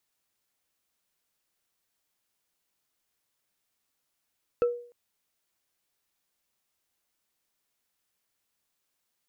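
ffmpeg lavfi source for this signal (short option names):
-f lavfi -i "aevalsrc='0.126*pow(10,-3*t/0.48)*sin(2*PI*481*t)+0.0316*pow(10,-3*t/0.142)*sin(2*PI*1326.1*t)+0.00794*pow(10,-3*t/0.063)*sin(2*PI*2599.3*t)+0.002*pow(10,-3*t/0.035)*sin(2*PI*4296.8*t)+0.000501*pow(10,-3*t/0.021)*sin(2*PI*6416.5*t)':d=0.3:s=44100"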